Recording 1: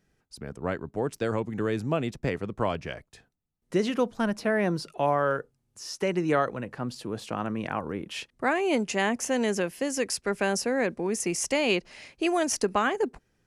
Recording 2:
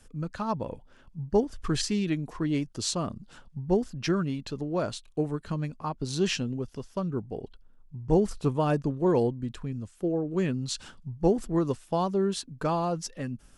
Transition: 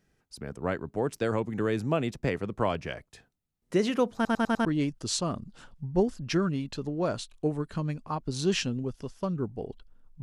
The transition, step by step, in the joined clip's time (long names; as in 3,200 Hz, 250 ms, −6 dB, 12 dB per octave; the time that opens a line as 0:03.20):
recording 1
0:04.15: stutter in place 0.10 s, 5 plays
0:04.65: continue with recording 2 from 0:02.39